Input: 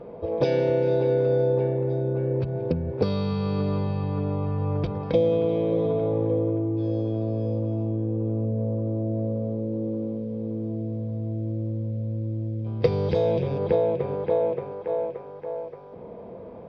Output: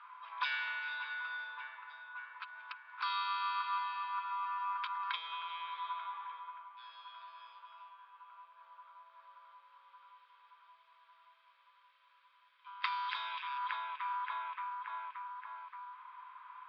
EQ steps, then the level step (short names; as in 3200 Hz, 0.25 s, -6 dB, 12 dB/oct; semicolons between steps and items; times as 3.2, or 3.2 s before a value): rippled Chebyshev high-pass 980 Hz, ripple 6 dB; air absorption 440 m; +13.0 dB